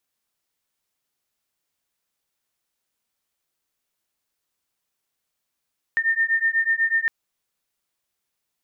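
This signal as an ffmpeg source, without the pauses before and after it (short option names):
-f lavfi -i "aevalsrc='0.0841*(sin(2*PI*1810*t)+sin(2*PI*1818.1*t))':d=1.11:s=44100"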